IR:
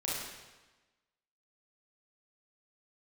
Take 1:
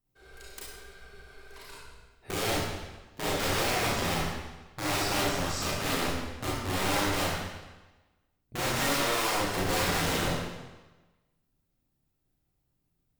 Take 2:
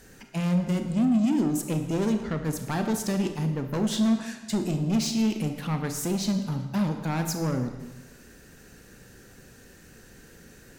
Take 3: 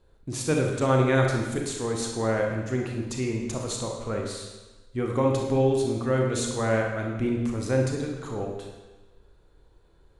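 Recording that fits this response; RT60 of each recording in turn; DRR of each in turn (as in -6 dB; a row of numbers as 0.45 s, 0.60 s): 1; 1.2 s, 1.2 s, 1.2 s; -6.5 dB, 6.0 dB, 0.5 dB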